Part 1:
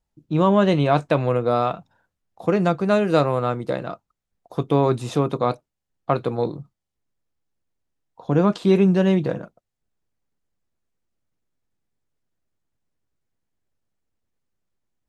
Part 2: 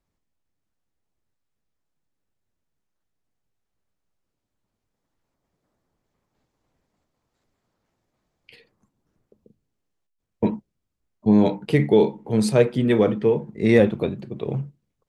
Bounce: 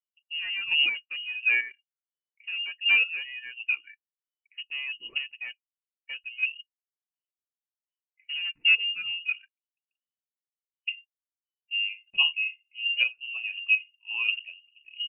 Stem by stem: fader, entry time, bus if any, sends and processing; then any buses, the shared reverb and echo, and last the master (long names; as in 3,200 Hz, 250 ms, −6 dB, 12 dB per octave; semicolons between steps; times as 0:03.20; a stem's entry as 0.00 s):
+2.0 dB, 0.00 s, no send, high-pass filter 42 Hz 24 dB per octave; reverb reduction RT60 1.1 s; soft clipping −20.5 dBFS, distortion −8 dB
−5.5 dB, 0.45 s, no send, no processing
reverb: not used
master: square-wave tremolo 1.4 Hz, depth 60%, duty 25%; voice inversion scrambler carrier 3,000 Hz; every bin expanded away from the loudest bin 1.5 to 1